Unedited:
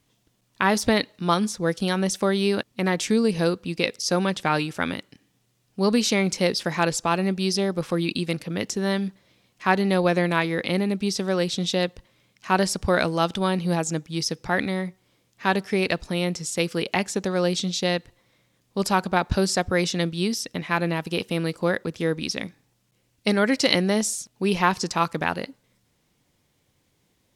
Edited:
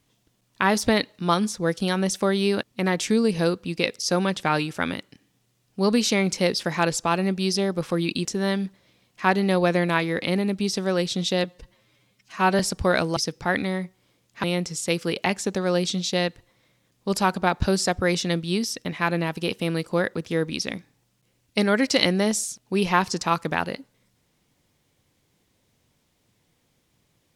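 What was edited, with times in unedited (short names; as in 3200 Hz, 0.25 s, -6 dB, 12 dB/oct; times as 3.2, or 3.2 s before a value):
8.25–8.67 cut
11.86–12.63 stretch 1.5×
13.2–14.2 cut
15.47–16.13 cut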